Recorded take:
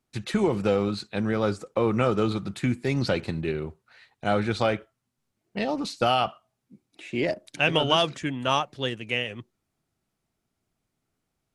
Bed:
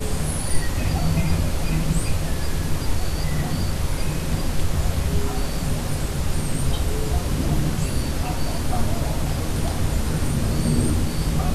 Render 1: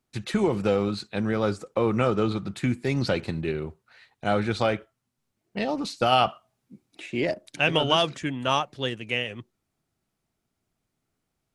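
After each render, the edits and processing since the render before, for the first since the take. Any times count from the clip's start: 2.1–2.57 high shelf 7600 Hz -8 dB; 6.12–7.06 gain +3.5 dB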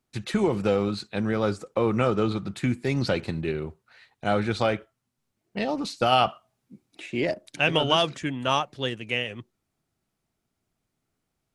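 nothing audible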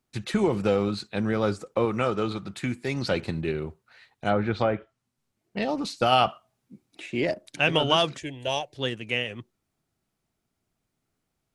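1.85–3.11 low shelf 430 Hz -5.5 dB; 4.28–5.62 treble ducked by the level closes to 1500 Hz, closed at -19 dBFS; 8.2–8.76 fixed phaser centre 520 Hz, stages 4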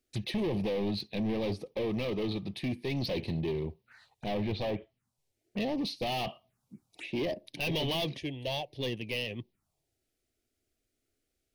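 overloaded stage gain 27.5 dB; envelope phaser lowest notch 160 Hz, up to 1400 Hz, full sweep at -39 dBFS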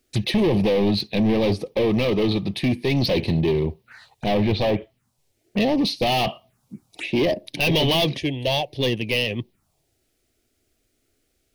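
gain +12 dB

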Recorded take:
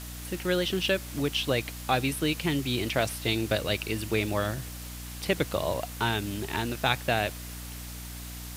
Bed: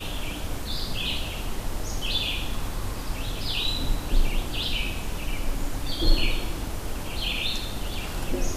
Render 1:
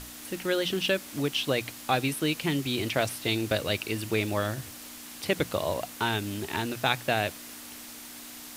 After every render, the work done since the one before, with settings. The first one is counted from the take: notches 60/120/180 Hz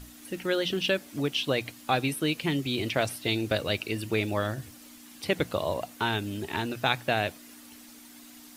denoiser 9 dB, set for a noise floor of -44 dBFS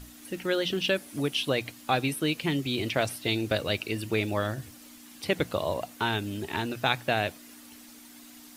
0.96–1.49 bell 10000 Hz +9 dB 0.32 oct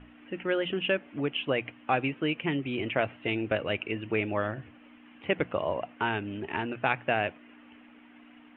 steep low-pass 3000 Hz 72 dB/oct; low shelf 110 Hz -9.5 dB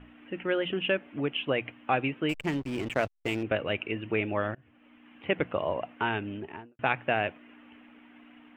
2.29–3.43 backlash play -31.5 dBFS; 4.55–5.39 fade in equal-power, from -23.5 dB; 6.25–6.79 studio fade out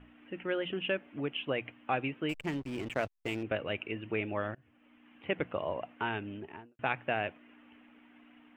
gain -5 dB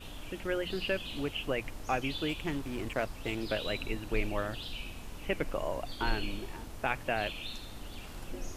add bed -13.5 dB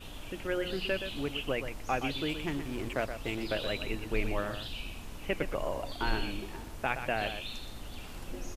echo 0.122 s -9 dB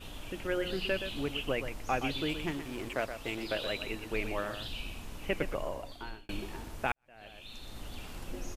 2.51–4.6 low shelf 230 Hz -7 dB; 5.44–6.29 fade out; 6.92–7.8 fade in quadratic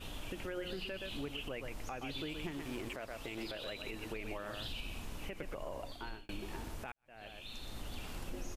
compressor 4:1, threshold -37 dBFS, peak gain reduction 10 dB; limiter -31.5 dBFS, peak gain reduction 10 dB

